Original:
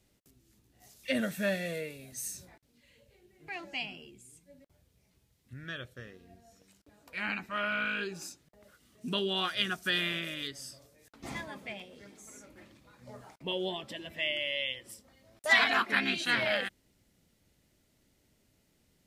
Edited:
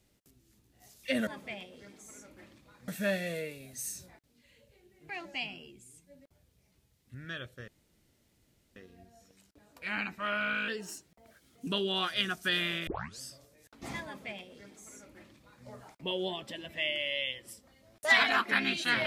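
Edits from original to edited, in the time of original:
6.07 s: insert room tone 1.08 s
7.99–9.08 s: speed 110%
10.28 s: tape start 0.34 s
11.46–13.07 s: copy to 1.27 s

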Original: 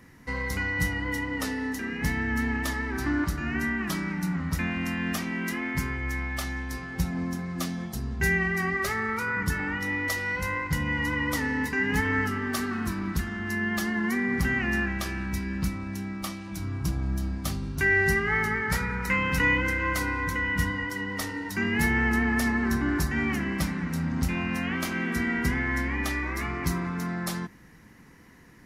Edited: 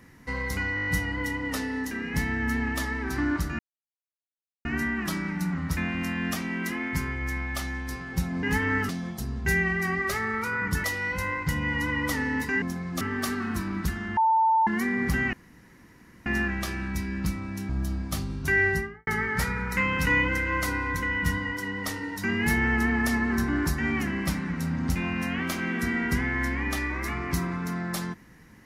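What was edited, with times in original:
0.75 s: stutter 0.02 s, 7 plays
3.47 s: insert silence 1.06 s
7.25–7.64 s: swap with 11.86–12.32 s
9.59–10.08 s: delete
13.48–13.98 s: bleep 892 Hz -18 dBFS
14.64 s: insert room tone 0.93 s
16.07–17.02 s: delete
17.94–18.40 s: studio fade out

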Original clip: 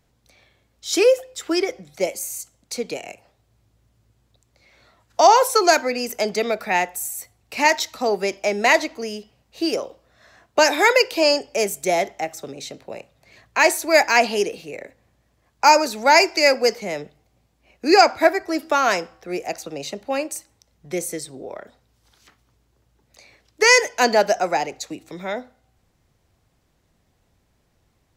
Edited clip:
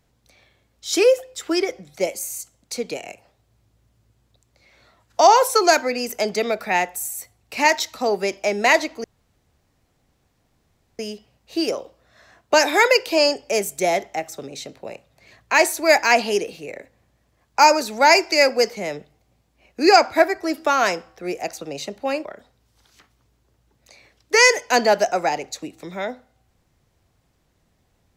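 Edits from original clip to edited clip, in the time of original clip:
9.04 s: insert room tone 1.95 s
20.30–21.53 s: delete

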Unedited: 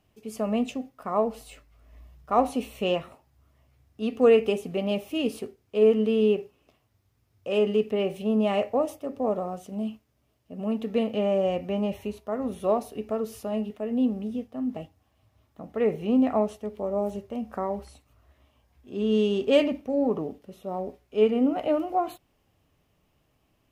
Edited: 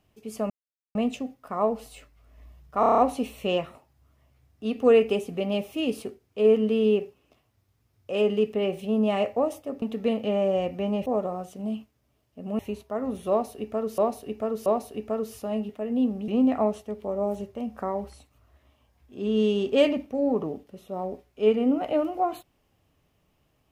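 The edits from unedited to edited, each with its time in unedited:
0.50 s: insert silence 0.45 s
2.35 s: stutter 0.03 s, 7 plays
10.72–11.96 s: move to 9.19 s
12.67–13.35 s: loop, 3 plays
14.29–16.03 s: delete

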